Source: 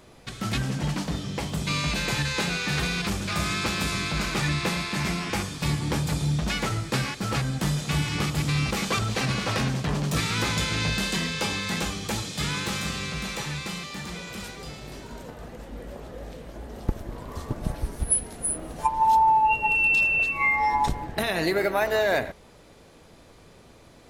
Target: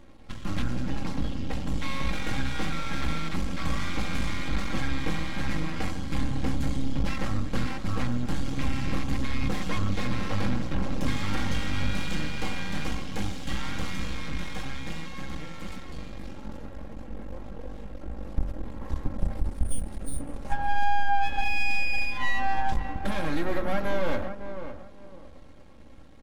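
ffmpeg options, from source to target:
-filter_complex "[0:a]asplit=2[a][b];[b]adelay=508,lowpass=f=890:p=1,volume=-10dB,asplit=2[c][d];[d]adelay=508,lowpass=f=890:p=1,volume=0.31,asplit=2[e][f];[f]adelay=508,lowpass=f=890:p=1,volume=0.31[g];[c][e][g]amix=inputs=3:normalize=0[h];[a][h]amix=inputs=2:normalize=0,aeval=exprs='max(val(0),0)':c=same,highshelf=f=4.1k:g=-11,aecho=1:1:3.4:0.53,bandreject=f=48.99:t=h:w=4,bandreject=f=97.98:t=h:w=4,bandreject=f=146.97:t=h:w=4,bandreject=f=195.96:t=h:w=4,bandreject=f=244.95:t=h:w=4,bandreject=f=293.94:t=h:w=4,bandreject=f=342.93:t=h:w=4,bandreject=f=391.92:t=h:w=4,bandreject=f=440.91:t=h:w=4,bandreject=f=489.9:t=h:w=4,bandreject=f=538.89:t=h:w=4,bandreject=f=587.88:t=h:w=4,bandreject=f=636.87:t=h:w=4,bandreject=f=685.86:t=h:w=4,bandreject=f=734.85:t=h:w=4,bandreject=f=783.84:t=h:w=4,bandreject=f=832.83:t=h:w=4,bandreject=f=881.82:t=h:w=4,bandreject=f=930.81:t=h:w=4,bandreject=f=979.8:t=h:w=4,bandreject=f=1.02879k:t=h:w=4,bandreject=f=1.07778k:t=h:w=4,bandreject=f=1.12677k:t=h:w=4,bandreject=f=1.17576k:t=h:w=4,bandreject=f=1.22475k:t=h:w=4,bandreject=f=1.27374k:t=h:w=4,bandreject=f=1.32273k:t=h:w=4,bandreject=f=1.37172k:t=h:w=4,bandreject=f=1.42071k:t=h:w=4,bandreject=f=1.4697k:t=h:w=4,bandreject=f=1.51869k:t=h:w=4,bandreject=f=1.56768k:t=h:w=4,bandreject=f=1.61667k:t=h:w=4,bandreject=f=1.66566k:t=h:w=4,asetrate=40517,aresample=44100,bass=f=250:g=7,treble=f=4k:g=1,asoftclip=type=tanh:threshold=-12dB"

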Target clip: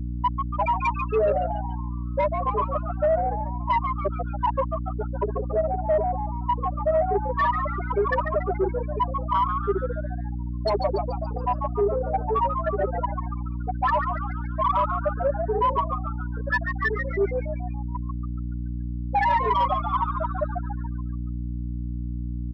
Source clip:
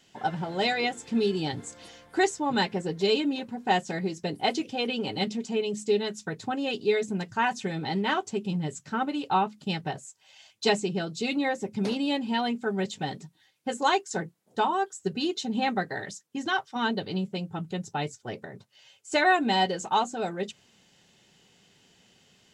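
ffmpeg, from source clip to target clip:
-filter_complex "[0:a]bandreject=f=60:t=h:w=6,bandreject=f=120:t=h:w=6,bandreject=f=180:t=h:w=6,bandreject=f=240:t=h:w=6,bandreject=f=300:t=h:w=6,bandreject=f=360:t=h:w=6,bandreject=f=420:t=h:w=6,bandreject=f=480:t=h:w=6,afftfilt=real='re*gte(hypot(re,im),0.355)':imag='im*gte(hypot(re,im),0.355)':win_size=1024:overlap=0.75,anlmdn=0.0251,equalizer=f=125:t=o:w=0.33:g=11,equalizer=f=250:t=o:w=0.33:g=-5,equalizer=f=630:t=o:w=0.33:g=8,equalizer=f=1.6k:t=o:w=0.33:g=8,equalizer=f=2.5k:t=o:w=0.33:g=9,equalizer=f=6.3k:t=o:w=0.33:g=11,afreqshift=210,aecho=1:1:5.1:0.94,acontrast=40,alimiter=limit=-14.5dB:level=0:latency=1:release=17,asplit=2[a][b];[b]asplit=6[c][d][e][f][g][h];[c]adelay=142,afreqshift=110,volume=-6.5dB[i];[d]adelay=284,afreqshift=220,volume=-12.7dB[j];[e]adelay=426,afreqshift=330,volume=-18.9dB[k];[f]adelay=568,afreqshift=440,volume=-25.1dB[l];[g]adelay=710,afreqshift=550,volume=-31.3dB[m];[h]adelay=852,afreqshift=660,volume=-37.5dB[n];[i][j][k][l][m][n]amix=inputs=6:normalize=0[o];[a][o]amix=inputs=2:normalize=0,aeval=exprs='val(0)+0.0398*(sin(2*PI*60*n/s)+sin(2*PI*2*60*n/s)/2+sin(2*PI*3*60*n/s)/3+sin(2*PI*4*60*n/s)/4+sin(2*PI*5*60*n/s)/5)':c=same,asoftclip=type=tanh:threshold=-13dB,adynamicequalizer=threshold=0.0224:dfrequency=1800:dqfactor=0.7:tfrequency=1800:tqfactor=0.7:attack=5:release=100:ratio=0.375:range=3:mode=cutabove:tftype=highshelf"

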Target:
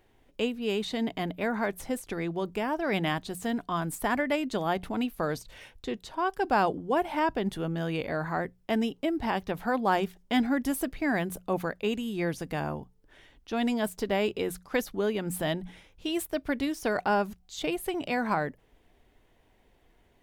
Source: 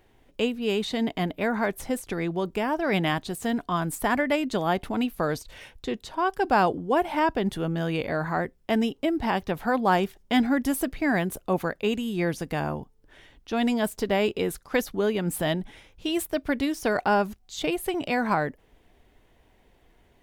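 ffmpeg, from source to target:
-af "bandreject=f=60:t=h:w=6,bandreject=f=120:t=h:w=6,bandreject=f=180:t=h:w=6,volume=-3.5dB"

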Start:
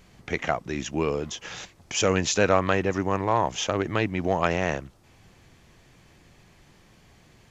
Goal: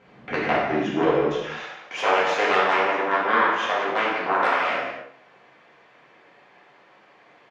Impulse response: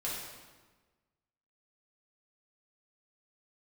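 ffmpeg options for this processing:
-filter_complex "[0:a]aeval=exprs='0.596*(cos(1*acos(clip(val(0)/0.596,-1,1)))-cos(1*PI/2))+0.188*(cos(3*acos(clip(val(0)/0.596,-1,1)))-cos(3*PI/2))+0.133*(cos(5*acos(clip(val(0)/0.596,-1,1)))-cos(5*PI/2))+0.133*(cos(6*acos(clip(val(0)/0.596,-1,1)))-cos(6*PI/2))+0.266*(cos(7*acos(clip(val(0)/0.596,-1,1)))-cos(7*PI/2))':c=same,asetnsamples=n=441:p=0,asendcmd='1.32 highpass f 540',highpass=200,lowpass=2.1k,asplit=2[a][b];[b]adelay=204.1,volume=-20dB,highshelf=f=4k:g=-4.59[c];[a][c]amix=inputs=2:normalize=0[d];[1:a]atrim=start_sample=2205,afade=t=out:st=0.37:d=0.01,atrim=end_sample=16758[e];[d][e]afir=irnorm=-1:irlink=0"

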